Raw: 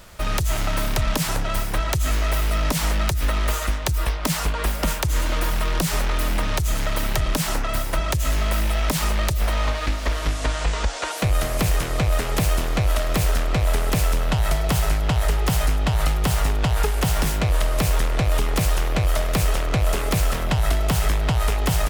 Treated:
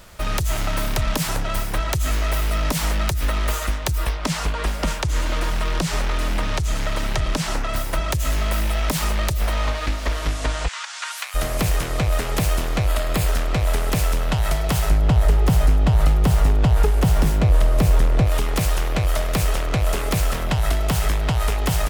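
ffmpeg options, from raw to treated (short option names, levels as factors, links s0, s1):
-filter_complex "[0:a]asettb=1/sr,asplit=3[s0][s1][s2];[s0]atrim=end=4.114[s3];[s1]atrim=start=4.11:end=7.76,asetpts=PTS-STARTPTS,afade=t=in:d=0.004:c=qsin,afade=t=out:st=3.646:d=0.004:c=qsin,acrossover=split=8800[s4][s5];[s5]acompressor=threshold=0.00447:ratio=4:attack=1:release=60[s6];[s4][s6]amix=inputs=2:normalize=0[s7];[s2]atrim=start=7.756[s8];[s3][s7]acrossfade=d=0.004:c1=hsin:c2=qsin[s9];[s9][s8]acrossfade=d=0.004:c1=qsin:c2=hsin,asplit=3[s10][s11][s12];[s10]afade=t=out:st=10.67:d=0.02[s13];[s11]highpass=f=1100:w=0.5412,highpass=f=1100:w=1.3066,afade=t=in:st=10.67:d=0.02,afade=t=out:st=11.34:d=0.02[s14];[s12]afade=t=in:st=11.34:d=0.02[s15];[s13][s14][s15]amix=inputs=3:normalize=0,asettb=1/sr,asplit=3[s16][s17][s18];[s16]atrim=end=12.874[s19];[s17]atrim=start=12.87:end=13.28,asetpts=PTS-STARTPTS,afade=t=in:d=0.004:c=qsin,afade=t=out:st=0.406:d=0.004:c=qsin,bandreject=f=5800:w=7.1[s20];[s18]atrim=start=13.276[s21];[s19][s20]acrossfade=d=0.004:c1=hsin:c2=qsin[s22];[s22][s21]acrossfade=d=0.004:c1=qsin:c2=hsin,asettb=1/sr,asplit=3[s23][s24][s25];[s23]atrim=end=14.904[s26];[s24]atrim=start=14.9:end=18.27,asetpts=PTS-STARTPTS,afade=t=in:d=0.004:c=qsin,afade=t=out:st=3.366:d=0.004:c=qsin,tiltshelf=f=830:g=5[s27];[s25]atrim=start=18.266[s28];[s26][s27]acrossfade=d=0.004:c1=hsin:c2=qsin[s29];[s29][s28]acrossfade=d=0.004:c1=qsin:c2=hsin"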